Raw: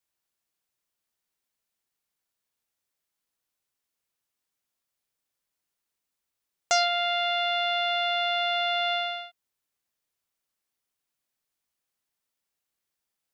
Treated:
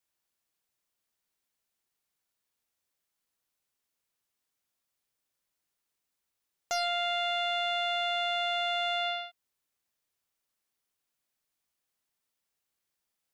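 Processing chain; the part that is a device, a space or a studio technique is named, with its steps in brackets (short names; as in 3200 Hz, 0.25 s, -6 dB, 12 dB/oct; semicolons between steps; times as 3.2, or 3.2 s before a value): soft clipper into limiter (soft clip -14.5 dBFS, distortion -23 dB; limiter -22.5 dBFS, peak gain reduction 7 dB)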